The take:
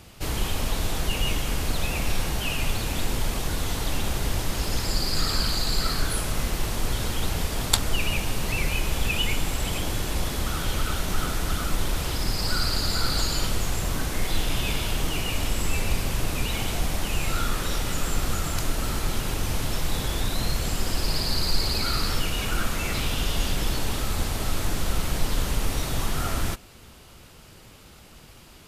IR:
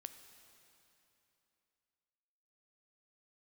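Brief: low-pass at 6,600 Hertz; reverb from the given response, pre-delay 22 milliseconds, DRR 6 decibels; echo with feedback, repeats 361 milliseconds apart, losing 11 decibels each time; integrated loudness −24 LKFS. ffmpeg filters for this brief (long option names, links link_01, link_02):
-filter_complex "[0:a]lowpass=6600,aecho=1:1:361|722|1083:0.282|0.0789|0.0221,asplit=2[link_01][link_02];[1:a]atrim=start_sample=2205,adelay=22[link_03];[link_02][link_03]afir=irnorm=-1:irlink=0,volume=-1dB[link_04];[link_01][link_04]amix=inputs=2:normalize=0,volume=3dB"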